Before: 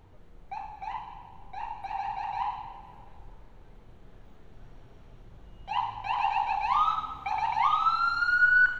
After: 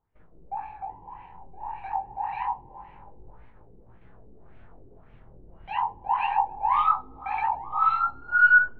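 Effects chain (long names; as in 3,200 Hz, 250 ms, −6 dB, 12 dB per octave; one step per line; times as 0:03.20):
auto-filter low-pass sine 1.8 Hz 380–2,400 Hz
noise gate −49 dBFS, range −23 dB
chorus effect 0.26 Hz, delay 17.5 ms, depth 7.1 ms
level +2 dB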